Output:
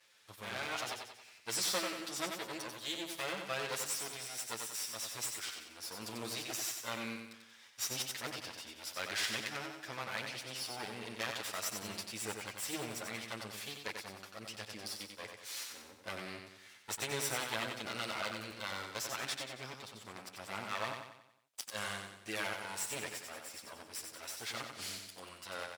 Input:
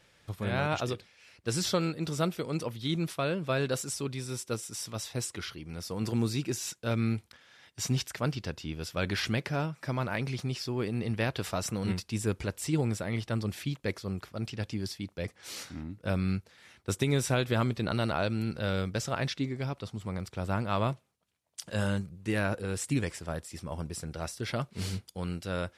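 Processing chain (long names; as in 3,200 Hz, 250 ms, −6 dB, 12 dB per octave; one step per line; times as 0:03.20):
lower of the sound and its delayed copy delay 9.2 ms
high-pass filter 1,400 Hz 6 dB per octave
on a send: repeating echo 92 ms, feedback 47%, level −5.5 dB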